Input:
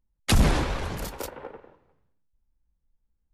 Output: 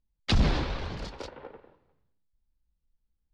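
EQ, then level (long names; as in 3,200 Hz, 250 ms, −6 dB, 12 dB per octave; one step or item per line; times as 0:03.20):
transistor ladder low-pass 5,400 Hz, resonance 40%
low-shelf EQ 490 Hz +3 dB
+2.0 dB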